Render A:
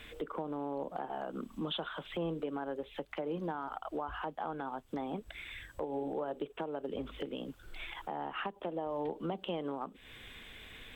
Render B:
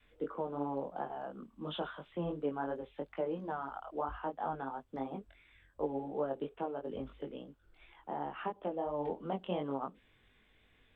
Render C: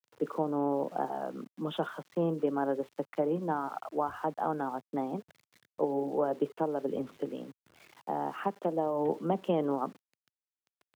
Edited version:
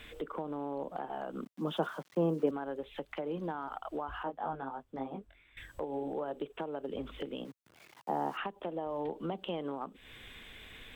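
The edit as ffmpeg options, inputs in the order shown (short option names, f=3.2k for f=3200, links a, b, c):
-filter_complex "[2:a]asplit=2[a][b];[0:a]asplit=4[c][d][e][f];[c]atrim=end=1.452[g];[a]atrim=start=1.448:end=2.512[h];[d]atrim=start=2.508:end=4.232[i];[1:a]atrim=start=4.228:end=5.572[j];[e]atrim=start=5.568:end=7.452[k];[b]atrim=start=7.448:end=8.372[l];[f]atrim=start=8.368[m];[g][h]acrossfade=d=0.004:c1=hsin:c2=hsin[n];[n][i]acrossfade=d=0.004:c1=hsin:c2=hsin[o];[o][j]acrossfade=d=0.004:c1=hsin:c2=hsin[p];[p][k]acrossfade=d=0.004:c1=hsin:c2=hsin[q];[q][l]acrossfade=d=0.004:c1=hsin:c2=hsin[r];[r][m]acrossfade=d=0.004:c1=hsin:c2=hsin"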